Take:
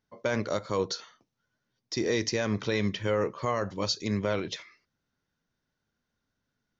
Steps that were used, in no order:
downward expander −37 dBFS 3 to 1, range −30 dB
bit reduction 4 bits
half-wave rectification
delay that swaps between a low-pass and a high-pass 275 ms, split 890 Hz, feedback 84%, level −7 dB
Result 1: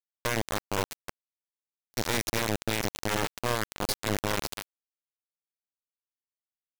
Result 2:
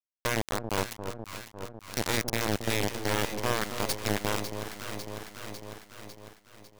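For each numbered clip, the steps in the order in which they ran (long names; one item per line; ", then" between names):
delay that swaps between a low-pass and a high-pass, then bit reduction, then downward expander, then half-wave rectification
bit reduction, then delay that swaps between a low-pass and a high-pass, then downward expander, then half-wave rectification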